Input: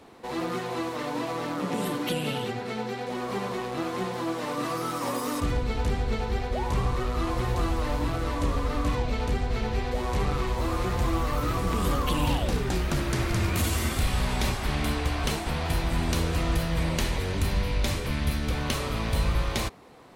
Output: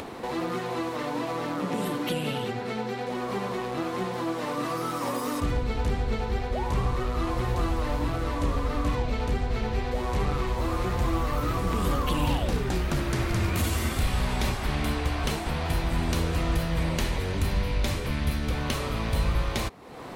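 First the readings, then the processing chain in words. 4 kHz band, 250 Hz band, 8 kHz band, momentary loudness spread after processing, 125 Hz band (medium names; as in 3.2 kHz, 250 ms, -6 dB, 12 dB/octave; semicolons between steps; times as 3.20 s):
-1.5 dB, 0.0 dB, -2.5 dB, 4 LU, 0.0 dB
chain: peaking EQ 7.9 kHz -2.5 dB 2.4 oct; upward compressor, threshold -27 dBFS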